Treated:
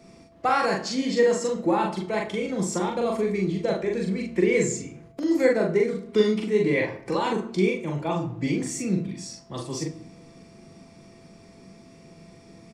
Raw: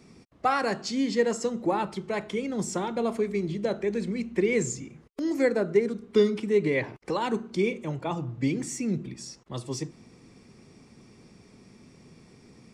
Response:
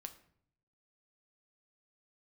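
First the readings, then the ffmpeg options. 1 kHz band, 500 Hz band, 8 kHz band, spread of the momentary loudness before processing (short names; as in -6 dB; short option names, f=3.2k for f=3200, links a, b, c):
+3.0 dB, +3.0 dB, +3.0 dB, 10 LU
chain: -filter_complex "[0:a]asplit=2[a][b];[b]adelay=42,volume=-2dB[c];[a][c]amix=inputs=2:normalize=0[d];[1:a]atrim=start_sample=2205[e];[d][e]afir=irnorm=-1:irlink=0,aeval=exprs='val(0)+0.000891*sin(2*PI*670*n/s)':c=same,volume=6dB"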